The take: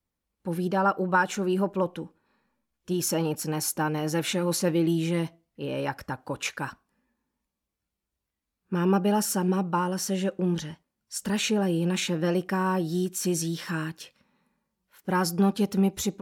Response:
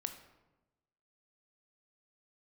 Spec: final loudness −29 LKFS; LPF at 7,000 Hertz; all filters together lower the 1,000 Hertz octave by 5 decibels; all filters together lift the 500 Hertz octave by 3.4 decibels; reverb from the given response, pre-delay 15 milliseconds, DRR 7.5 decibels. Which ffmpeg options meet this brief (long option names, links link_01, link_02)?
-filter_complex "[0:a]lowpass=7000,equalizer=frequency=500:width_type=o:gain=6.5,equalizer=frequency=1000:width_type=o:gain=-8.5,asplit=2[link_01][link_02];[1:a]atrim=start_sample=2205,adelay=15[link_03];[link_02][link_03]afir=irnorm=-1:irlink=0,volume=-6.5dB[link_04];[link_01][link_04]amix=inputs=2:normalize=0,volume=-3.5dB"